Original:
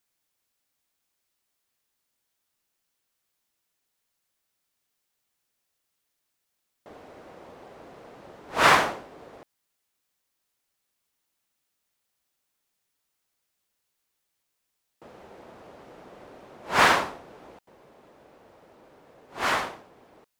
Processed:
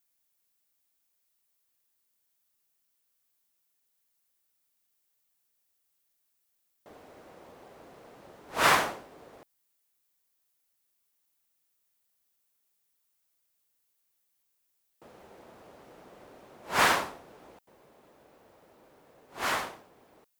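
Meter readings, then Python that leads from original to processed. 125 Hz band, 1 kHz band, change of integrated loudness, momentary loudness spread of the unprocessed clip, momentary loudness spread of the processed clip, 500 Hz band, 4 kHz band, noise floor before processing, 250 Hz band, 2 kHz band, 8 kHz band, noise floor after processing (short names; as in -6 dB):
-5.0 dB, -5.0 dB, -4.5 dB, 18 LU, 18 LU, -5.0 dB, -3.5 dB, -80 dBFS, -5.0 dB, -4.5 dB, -0.5 dB, -76 dBFS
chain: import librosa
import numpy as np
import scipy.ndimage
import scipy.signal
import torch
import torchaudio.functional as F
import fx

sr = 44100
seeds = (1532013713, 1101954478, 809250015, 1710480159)

y = fx.high_shelf(x, sr, hz=8800.0, db=11.5)
y = y * 10.0 ** (-5.0 / 20.0)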